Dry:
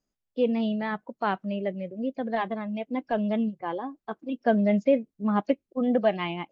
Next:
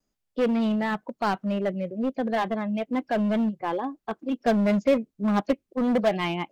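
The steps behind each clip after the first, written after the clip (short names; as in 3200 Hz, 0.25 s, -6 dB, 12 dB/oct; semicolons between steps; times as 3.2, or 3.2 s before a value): vibrato 0.32 Hz 10 cents; in parallel at -4 dB: wavefolder -26 dBFS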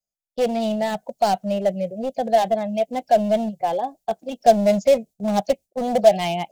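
gate with hold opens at -40 dBFS; EQ curve 190 Hz 0 dB, 300 Hz -11 dB, 710 Hz +11 dB, 1100 Hz -11 dB, 6900 Hz +13 dB; gain +2 dB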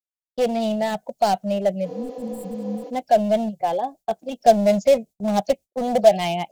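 gate with hold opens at -38 dBFS; spectral repair 1.88–2.87, 260–7200 Hz after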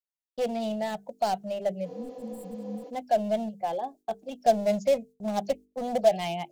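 notches 50/100/150/200/250/300/350/400/450 Hz; gain -7.5 dB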